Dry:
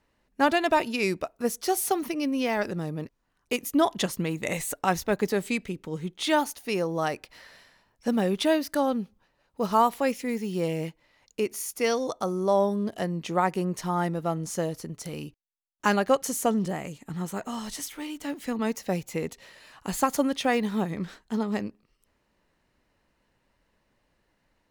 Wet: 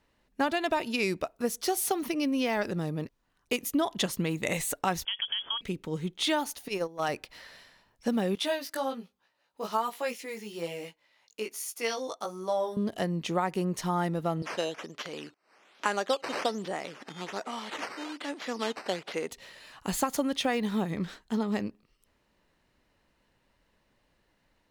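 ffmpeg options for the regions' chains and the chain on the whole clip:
ffmpeg -i in.wav -filter_complex "[0:a]asettb=1/sr,asplit=3[link_01][link_02][link_03];[link_01]atrim=end=5.054[link_04];[link_02]atrim=start=5.05:end=5.61,asetpts=PTS-STARTPTS,afade=type=in:duration=0.004:curve=qsin,afade=type=out:start_time=0.556:duration=0.004:curve=qsin,acompressor=threshold=-29dB:ratio=12:attack=3.2:release=140:knee=1:detection=peak,lowpass=frequency=3000:width_type=q:width=0.5098,lowpass=frequency=3000:width_type=q:width=0.6013,lowpass=frequency=3000:width_type=q:width=0.9,lowpass=frequency=3000:width_type=q:width=2.563,afreqshift=-3500[link_05];[link_03]atrim=start=5.606[link_06];[link_04][link_05]acrossfade=duration=0.004:curve1=hsin:curve2=qsin[link_07];[link_07][link_06]acrossfade=duration=0.004:curve1=qsin:curve2=hsin,asettb=1/sr,asplit=3[link_08][link_09][link_10];[link_08]atrim=end=6.684[link_11];[link_09]atrim=start=6.68:end=7.09,asetpts=PTS-STARTPTS,afade=type=in:duration=0.004:curve=qsin,afade=type=out:start_time=0.406:duration=0.004:curve=qsin,lowshelf=frequency=210:gain=-8.5,asoftclip=type=hard:threshold=-19dB,agate=range=-15dB:threshold=-29dB:ratio=16:release=100:detection=peak[link_12];[link_10]atrim=start=7.086[link_13];[link_11][link_12]acrossfade=duration=0.004:curve1=hsin:curve2=qsin[link_14];[link_14][link_13]acrossfade=duration=0.004:curve1=qsin:curve2=hsin,asettb=1/sr,asplit=3[link_15][link_16][link_17];[link_15]atrim=end=8.354[link_18];[link_16]atrim=start=8.35:end=12.77,asetpts=PTS-STARTPTS,afade=type=in:duration=0.004:curve=qsin,afade=type=out:start_time=4.416:duration=0.004:curve=qsin,highpass=frequency=640:poles=1,flanger=delay=16.5:depth=2.7:speed=1.2[link_19];[link_17]atrim=start=12.766[link_20];[link_18][link_19]acrossfade=duration=0.004:curve1=hsin:curve2=qsin[link_21];[link_21][link_20]acrossfade=duration=0.004:curve1=qsin:curve2=hsin,asettb=1/sr,asplit=3[link_22][link_23][link_24];[link_22]atrim=end=14.424[link_25];[link_23]atrim=start=14.42:end=19.31,asetpts=PTS-STARTPTS,afade=type=in:duration=0.004:curve=qsin,afade=type=out:start_time=4.886:duration=0.004:curve=qsin,acompressor=mode=upward:threshold=-31dB:ratio=2.5:attack=3.2:release=140:knee=2.83:detection=peak,acrusher=samples=9:mix=1:aa=0.000001:lfo=1:lforange=9:lforate=1.2,highpass=370,lowpass=6500[link_26];[link_24]atrim=start=19.306[link_27];[link_25][link_26]acrossfade=duration=0.004:curve1=hsin:curve2=qsin[link_28];[link_28][link_27]acrossfade=duration=0.004:curve1=qsin:curve2=hsin,equalizer=frequency=3500:width_type=o:width=0.77:gain=3,acompressor=threshold=-24dB:ratio=4" out.wav

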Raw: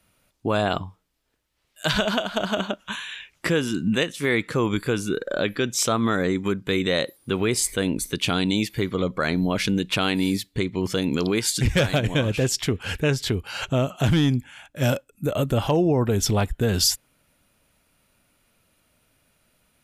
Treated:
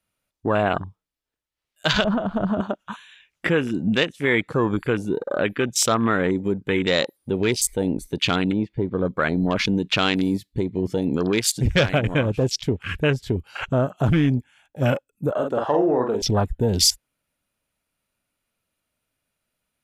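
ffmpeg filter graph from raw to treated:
ffmpeg -i in.wav -filter_complex "[0:a]asettb=1/sr,asplit=3[link_01][link_02][link_03];[link_01]atrim=end=2.044[link_04];[link_02]atrim=start=2.04:end=2.61,asetpts=PTS-STARTPTS,afade=type=in:duration=0.004:curve=qsin,afade=type=out:start_time=0.566:duration=0.004:curve=qsin,bass=frequency=250:gain=14,treble=frequency=4000:gain=-10,acompressor=threshold=-20dB:ratio=2.5:attack=3.2:release=140:knee=1:detection=peak[link_05];[link_03]atrim=start=2.606[link_06];[link_04][link_05]acrossfade=duration=0.004:curve1=hsin:curve2=qsin[link_07];[link_07][link_06]acrossfade=duration=0.004:curve1=qsin:curve2=hsin,asettb=1/sr,asplit=3[link_08][link_09][link_10];[link_08]atrim=end=8.524[link_11];[link_09]atrim=start=8.52:end=9.05,asetpts=PTS-STARTPTS,afade=type=in:duration=0.004:curve=qsin,afade=type=out:start_time=0.526:duration=0.004:curve=qsin,lowpass=2400,deesser=1,equalizer=frequency=1500:width=0.77:gain=-3.5[link_12];[link_10]atrim=start=9.046[link_13];[link_11][link_12]acrossfade=duration=0.004:curve1=hsin:curve2=qsin[link_14];[link_14][link_13]acrossfade=duration=0.004:curve1=qsin:curve2=hsin,asettb=1/sr,asplit=3[link_15][link_16][link_17];[link_15]atrim=end=15.314[link_18];[link_16]atrim=start=15.31:end=16.22,asetpts=PTS-STARTPTS,afade=type=in:duration=0.004:curve=qsin,afade=type=out:start_time=0.906:duration=0.004:curve=qsin,highpass=330,lowpass=6700,asplit=2[link_19][link_20];[link_20]adelay=48,volume=-4.5dB[link_21];[link_19][link_21]amix=inputs=2:normalize=0,atrim=end_sample=40131[link_22];[link_17]atrim=start=16.216[link_23];[link_18][link_22]acrossfade=duration=0.004:curve1=hsin:curve2=qsin[link_24];[link_24][link_23]acrossfade=duration=0.004:curve1=qsin:curve2=hsin,afwtdn=0.0316,lowshelf=frequency=450:gain=-3,volume=3.5dB" out.wav

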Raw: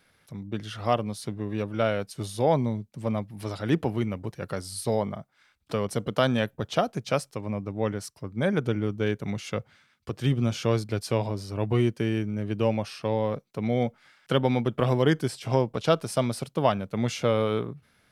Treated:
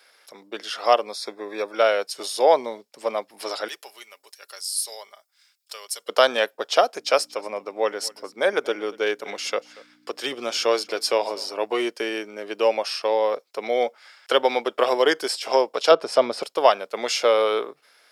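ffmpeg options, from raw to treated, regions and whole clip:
ffmpeg -i in.wav -filter_complex "[0:a]asettb=1/sr,asplit=3[link_01][link_02][link_03];[link_01]atrim=end=1.064[link_04];[link_02]atrim=start=1.06:end=1.76,asetpts=PTS-STARTPTS,afade=type=in:duration=0.004:curve=qsin,afade=type=out:start_time=0.696:duration=0.004:curve=qsin,acrossover=split=5500[link_05][link_06];[link_06]acompressor=threshold=-48dB:ratio=4:attack=1:release=60[link_07];[link_05][link_07]amix=inputs=2:normalize=0,asuperstop=centerf=2900:order=12:qfactor=5.2[link_08];[link_03]atrim=start=1.756[link_09];[link_04][link_08]acrossfade=duration=0.004:curve1=hsin:curve2=qsin[link_10];[link_10][link_09]acrossfade=duration=0.004:curve1=qsin:curve2=hsin,asettb=1/sr,asplit=3[link_11][link_12][link_13];[link_11]atrim=end=3.684[link_14];[link_12]atrim=start=3.68:end=6.09,asetpts=PTS-STARTPTS,afade=type=in:duration=0.004:curve=qsin,afade=type=out:start_time=2.406:duration=0.004:curve=qsin,aderivative,aecho=1:1:5:0.33,atrim=end_sample=106281[link_15];[link_13]atrim=start=6.086[link_16];[link_14][link_15]acrossfade=duration=0.004:curve1=hsin:curve2=qsin[link_17];[link_17][link_16]acrossfade=duration=0.004:curve1=qsin:curve2=hsin,asettb=1/sr,asplit=3[link_18][link_19][link_20];[link_18]atrim=end=6.954[link_21];[link_19]atrim=start=6.95:end=11.54,asetpts=PTS-STARTPTS,afade=type=in:duration=0.004:curve=qsin,afade=type=out:start_time=4.586:duration=0.004:curve=qsin,aeval=exprs='val(0)+0.01*(sin(2*PI*60*n/s)+sin(2*PI*2*60*n/s)/2+sin(2*PI*3*60*n/s)/3+sin(2*PI*4*60*n/s)/4+sin(2*PI*5*60*n/s)/5)':channel_layout=same,aecho=1:1:234:0.0841,atrim=end_sample=202419[link_22];[link_20]atrim=start=11.536[link_23];[link_21][link_22]acrossfade=duration=0.004:curve1=hsin:curve2=qsin[link_24];[link_24][link_23]acrossfade=duration=0.004:curve1=qsin:curve2=hsin,asettb=1/sr,asplit=3[link_25][link_26][link_27];[link_25]atrim=end=15.914[link_28];[link_26]atrim=start=15.91:end=16.43,asetpts=PTS-STARTPTS,afade=type=in:duration=0.004:curve=qsin,afade=type=out:start_time=0.516:duration=0.004:curve=qsin,highpass=56,aemphasis=mode=reproduction:type=riaa,acompressor=mode=upward:threshold=-23dB:ratio=2.5:attack=3.2:release=140:knee=2.83:detection=peak[link_29];[link_27]atrim=start=16.426[link_30];[link_28][link_29]acrossfade=duration=0.004:curve1=hsin:curve2=qsin[link_31];[link_31][link_30]acrossfade=duration=0.004:curve1=qsin:curve2=hsin,highpass=frequency=430:width=0.5412,highpass=frequency=430:width=1.3066,equalizer=frequency=5500:width_type=o:width=0.42:gain=12,bandreject=frequency=5900:width=6,volume=7.5dB" out.wav

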